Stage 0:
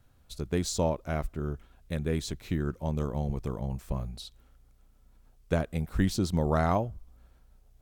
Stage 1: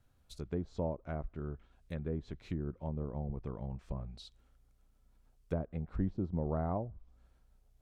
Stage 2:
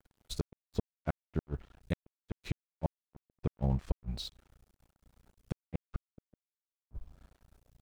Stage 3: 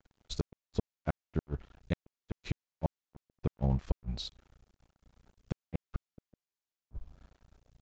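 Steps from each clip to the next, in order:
treble ducked by the level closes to 800 Hz, closed at -25 dBFS; gain -7.5 dB
in parallel at +1 dB: limiter -32 dBFS, peak gain reduction 10.5 dB; on the sum: flipped gate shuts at -24 dBFS, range -41 dB; crossover distortion -58 dBFS; gain +5.5 dB
downsampling 16000 Hz; gain +1 dB

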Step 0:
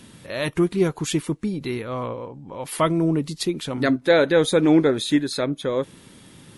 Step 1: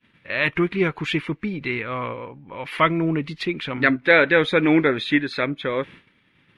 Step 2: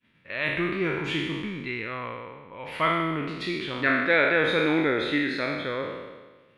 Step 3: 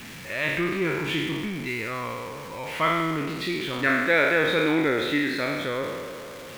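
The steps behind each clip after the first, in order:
expander -36 dBFS; EQ curve 740 Hz 0 dB, 2300 Hz +14 dB, 7600 Hz -19 dB; gain -1.5 dB
spectral trails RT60 1.33 s; gain -8.5 dB
zero-crossing step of -35 dBFS

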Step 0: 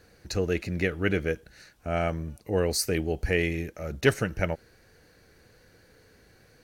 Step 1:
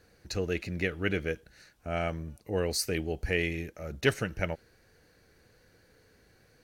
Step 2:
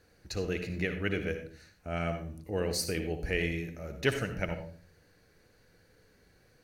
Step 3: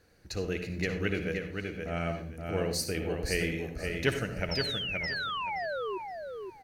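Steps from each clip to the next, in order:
dynamic EQ 3100 Hz, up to +4 dB, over -43 dBFS, Q 1; gain -4.5 dB
reverb RT60 0.45 s, pre-delay 60 ms, DRR 7.5 dB; gain -2.5 dB
painted sound fall, 4.51–5.98, 360–5500 Hz -35 dBFS; feedback echo 0.523 s, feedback 23%, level -5 dB

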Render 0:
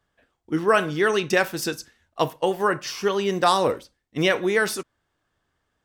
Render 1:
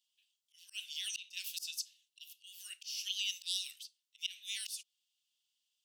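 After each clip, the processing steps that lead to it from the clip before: Chebyshev high-pass 2800 Hz, order 5; auto swell 0.241 s; gain +1 dB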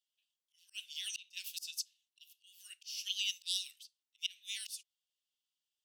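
upward expander 1.5:1, over -54 dBFS; gain +1.5 dB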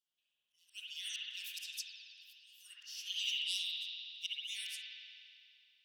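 spring tank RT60 2.5 s, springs 53 ms, chirp 50 ms, DRR -6.5 dB; gain -4.5 dB

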